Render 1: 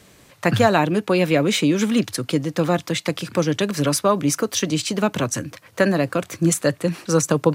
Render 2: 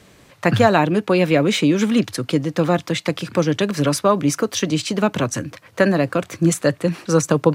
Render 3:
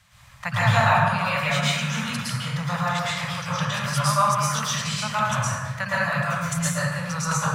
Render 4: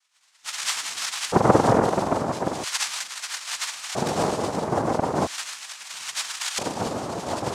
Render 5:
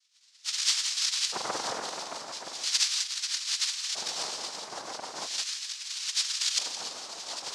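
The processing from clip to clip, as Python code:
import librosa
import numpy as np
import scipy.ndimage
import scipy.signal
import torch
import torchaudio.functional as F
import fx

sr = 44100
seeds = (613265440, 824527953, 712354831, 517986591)

y1 = fx.high_shelf(x, sr, hz=6000.0, db=-7.0)
y1 = F.gain(torch.from_numpy(y1), 2.0).numpy()
y2 = scipy.signal.sosfilt(scipy.signal.cheby1(2, 1.0, [120.0, 990.0], 'bandstop', fs=sr, output='sos'), y1)
y2 = fx.rev_plate(y2, sr, seeds[0], rt60_s=1.5, hf_ratio=0.45, predelay_ms=100, drr_db=-9.0)
y2 = F.gain(torch.from_numpy(y2), -7.0).numpy()
y3 = fx.octave_mirror(y2, sr, pivot_hz=750.0)
y3 = fx.filter_lfo_highpass(y3, sr, shape='square', hz=0.38, low_hz=220.0, high_hz=3200.0, q=5.1)
y3 = fx.noise_vocoder(y3, sr, seeds[1], bands=2)
y3 = F.gain(torch.from_numpy(y3), -5.0).numpy()
y4 = fx.bandpass_q(y3, sr, hz=4800.0, q=1.7)
y4 = y4 + 10.0 ** (-12.0 / 20.0) * np.pad(y4, (int(168 * sr / 1000.0), 0))[:len(y4)]
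y4 = F.gain(torch.from_numpy(y4), 4.5).numpy()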